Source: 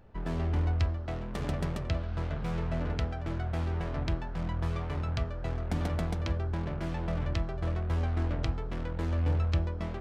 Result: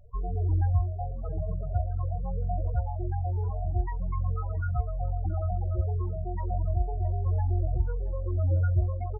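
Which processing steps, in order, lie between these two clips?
parametric band 180 Hz −12.5 dB 1.4 octaves
spectral peaks only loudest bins 8
on a send: single-tap delay 730 ms −21.5 dB
on the sum: wrong playback speed 44.1 kHz file played as 48 kHz
level +7 dB

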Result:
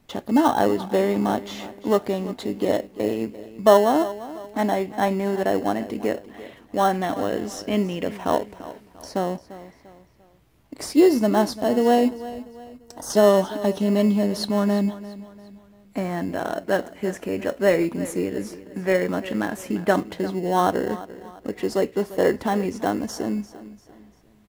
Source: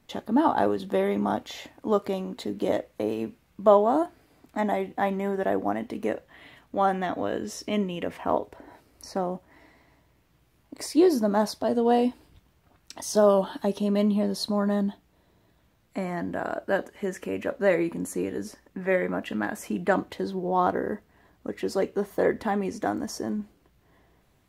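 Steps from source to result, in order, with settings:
in parallel at −10 dB: sample-rate reduction 2,400 Hz, jitter 0%
0:12.09–0:13.10: on the sum: parametric band 2,800 Hz −14.5 dB 1.2 octaves
repeating echo 345 ms, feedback 39%, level −16 dB
level +2 dB

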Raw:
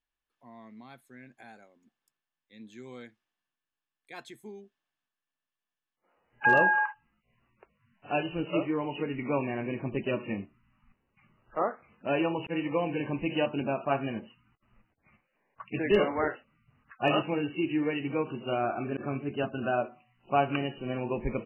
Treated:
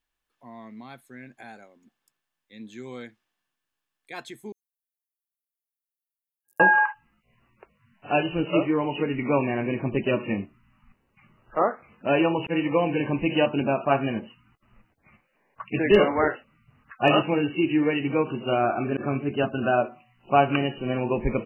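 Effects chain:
0:04.52–0:06.60: inverse Chebyshev high-pass filter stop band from 2,700 Hz, stop band 70 dB
level +6.5 dB

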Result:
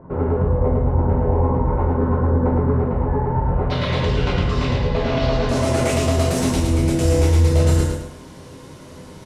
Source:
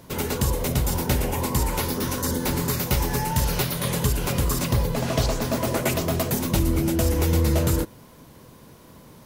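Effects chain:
low-pass filter 1,200 Hz 24 dB per octave, from 0:03.70 4,100 Hz, from 0:05.49 9,600 Hz
brickwall limiter −20 dBFS, peak gain reduction 9 dB
repeating echo 109 ms, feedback 32%, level −4.5 dB
dense smooth reverb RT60 0.5 s, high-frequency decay 0.95×, DRR 0.5 dB
level +4 dB

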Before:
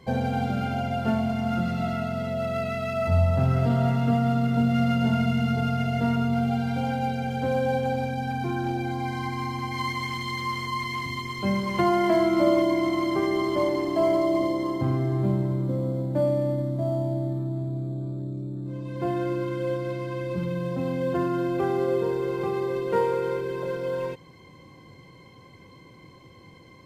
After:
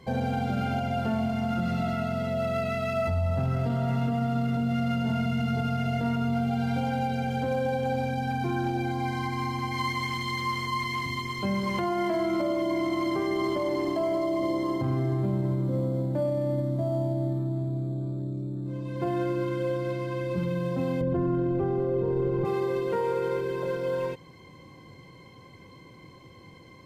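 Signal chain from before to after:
0:21.01–0:22.45: spectral tilt −4 dB per octave
brickwall limiter −19.5 dBFS, peak gain reduction 10 dB

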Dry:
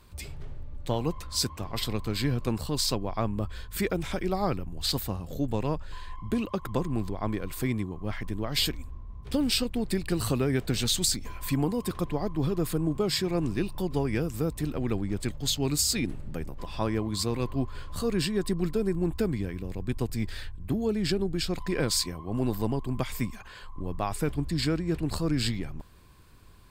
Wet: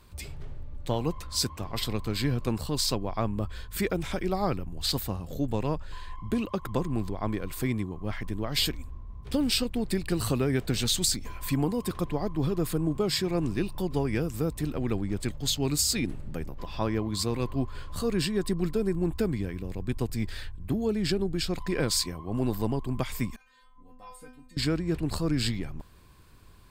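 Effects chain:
0:16.47–0:17.15: parametric band 8,700 Hz −11.5 dB 0.31 octaves
0:23.36–0:24.57: stiff-string resonator 250 Hz, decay 0.42 s, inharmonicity 0.002

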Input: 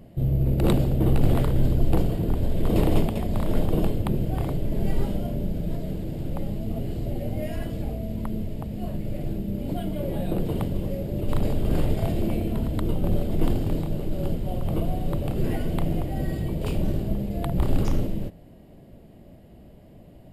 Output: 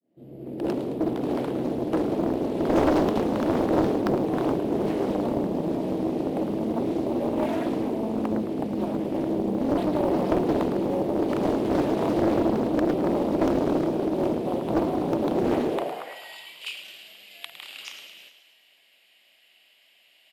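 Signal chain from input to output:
fade in at the beginning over 3.08 s
high-shelf EQ 8,800 Hz −10 dB
in parallel at +1.5 dB: downward compressor, threshold −31 dBFS, peak gain reduction 15.5 dB
on the sum: high-pass filter sweep 290 Hz → 2,700 Hz, 0:15.65–0:16.20
asymmetric clip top −18 dBFS
on a send: echo with shifted repeats 108 ms, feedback 59%, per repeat +52 Hz, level −10.5 dB
on the sum: highs frequency-modulated by the lows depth 0.95 ms

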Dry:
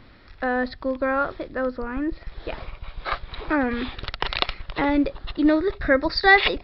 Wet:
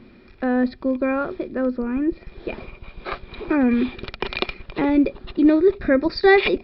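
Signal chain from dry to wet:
hollow resonant body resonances 230/360/2,400 Hz, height 15 dB, ringing for 40 ms
level −4.5 dB

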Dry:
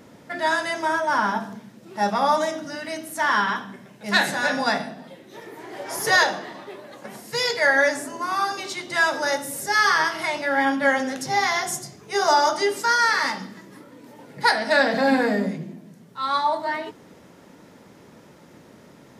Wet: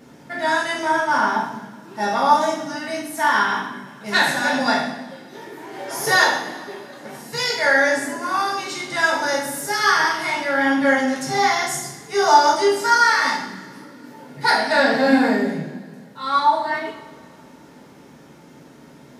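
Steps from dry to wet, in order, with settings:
coupled-rooms reverb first 0.6 s, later 2.5 s, from −20 dB, DRR −3.5 dB
level −2.5 dB

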